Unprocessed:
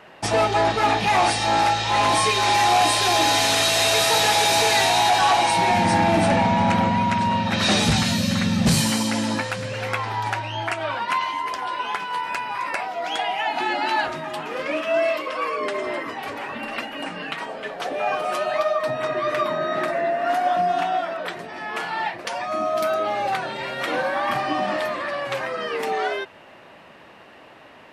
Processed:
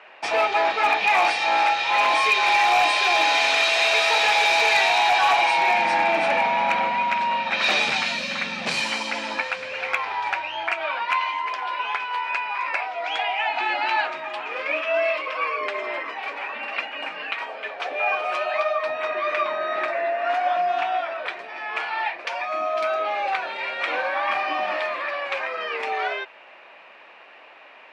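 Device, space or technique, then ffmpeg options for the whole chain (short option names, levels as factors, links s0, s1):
megaphone: -af "highpass=580,lowpass=4000,equalizer=f=2400:t=o:w=0.21:g=9.5,asoftclip=type=hard:threshold=0.266"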